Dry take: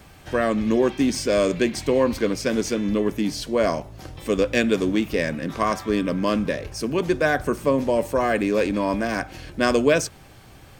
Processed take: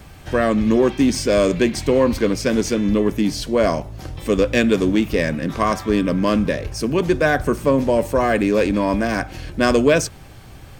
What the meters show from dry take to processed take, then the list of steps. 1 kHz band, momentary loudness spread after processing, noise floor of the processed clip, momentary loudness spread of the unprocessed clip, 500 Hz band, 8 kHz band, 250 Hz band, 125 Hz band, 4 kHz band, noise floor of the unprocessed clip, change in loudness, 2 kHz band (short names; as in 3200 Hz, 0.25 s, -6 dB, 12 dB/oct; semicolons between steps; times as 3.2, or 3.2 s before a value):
+3.0 dB, 6 LU, -40 dBFS, 6 LU, +3.5 dB, +3.0 dB, +4.5 dB, +6.5 dB, +3.0 dB, -47 dBFS, +4.0 dB, +3.0 dB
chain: low shelf 140 Hz +6.5 dB; in parallel at -7 dB: hard clip -14 dBFS, distortion -17 dB